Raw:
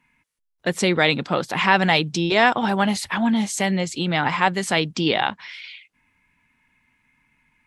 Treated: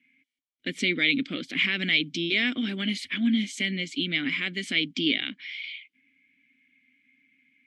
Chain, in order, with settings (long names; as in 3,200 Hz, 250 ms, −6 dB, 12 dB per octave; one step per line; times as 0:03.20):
high-shelf EQ 2,300 Hz +10 dB
in parallel at −1.5 dB: brickwall limiter −6.5 dBFS, peak gain reduction 9 dB
on the sum: formant filter i